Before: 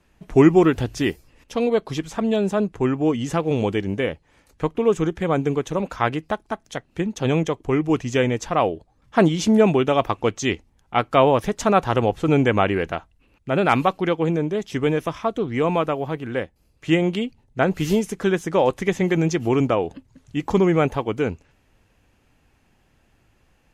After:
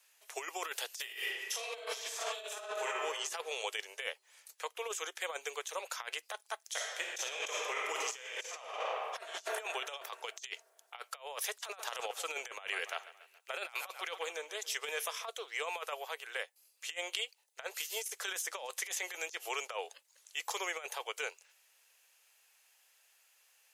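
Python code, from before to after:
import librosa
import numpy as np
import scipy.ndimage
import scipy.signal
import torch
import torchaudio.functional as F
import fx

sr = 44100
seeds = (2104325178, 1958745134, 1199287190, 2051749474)

y = fx.reverb_throw(x, sr, start_s=1.02, length_s=1.87, rt60_s=1.5, drr_db=-5.5)
y = fx.reverb_throw(y, sr, start_s=6.66, length_s=2.62, rt60_s=2.2, drr_db=-1.5)
y = fx.echo_feedback(y, sr, ms=140, feedback_pct=51, wet_db=-19.0, at=(11.55, 15.24))
y = scipy.signal.sosfilt(scipy.signal.butter(8, 440.0, 'highpass', fs=sr, output='sos'), y)
y = np.diff(y, prepend=0.0)
y = fx.over_compress(y, sr, threshold_db=-42.0, ratio=-0.5)
y = y * 10.0 ** (3.5 / 20.0)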